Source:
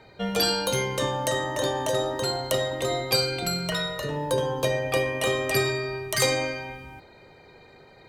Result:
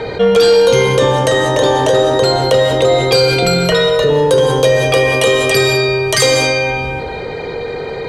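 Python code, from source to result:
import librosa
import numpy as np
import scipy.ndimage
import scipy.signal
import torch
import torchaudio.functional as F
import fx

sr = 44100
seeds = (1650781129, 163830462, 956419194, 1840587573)

y = fx.high_shelf(x, sr, hz=3800.0, db=9.5, at=(4.15, 6.71))
y = fx.rider(y, sr, range_db=10, speed_s=2.0)
y = fx.small_body(y, sr, hz=(460.0, 3300.0), ring_ms=90, db=15)
y = 10.0 ** (-12.5 / 20.0) * np.tanh(y / 10.0 ** (-12.5 / 20.0))
y = fx.air_absorb(y, sr, metres=55.0)
y = fx.rev_gated(y, sr, seeds[0], gate_ms=220, shape='rising', drr_db=8.0)
y = fx.env_flatten(y, sr, amount_pct=50)
y = y * librosa.db_to_amplitude(7.5)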